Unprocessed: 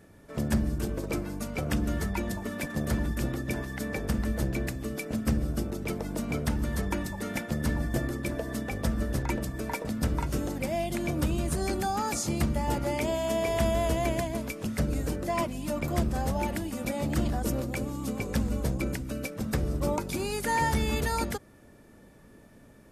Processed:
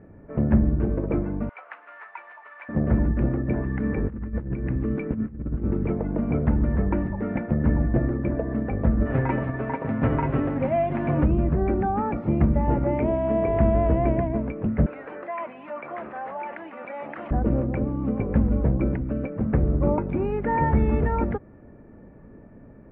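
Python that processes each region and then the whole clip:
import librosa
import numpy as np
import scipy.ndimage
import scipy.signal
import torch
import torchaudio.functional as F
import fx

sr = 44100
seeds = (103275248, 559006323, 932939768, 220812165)

y = fx.chain(x, sr, fx.cvsd(bps=32000),
    fx.highpass(hz=1000.0, slope=24), at=(1.49, 2.69))
y = fx.chain(y, sr, fx.peak_eq(hz=650.0, db=-10.5, octaves=0.55),
    fx.over_compress(threshold_db=-33.0, ratio=-0.5), at=(3.64, 5.88))
y = fx.envelope_flatten(y, sr, power=0.6, at=(9.05, 11.22), fade=0.02)
y = fx.highpass(y, sr, hz=52.0, slope=12, at=(9.05, 11.22), fade=0.02)
y = fx.comb(y, sr, ms=7.5, depth=0.61, at=(9.05, 11.22), fade=0.02)
y = fx.chain(y, sr, fx.highpass(hz=1100.0, slope=12),
    fx.env_flatten(amount_pct=50), at=(14.86, 17.31))
y = scipy.signal.sosfilt(scipy.signal.butter(6, 2400.0, 'lowpass', fs=sr, output='sos'), y)
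y = fx.tilt_shelf(y, sr, db=8.0, hz=1400.0)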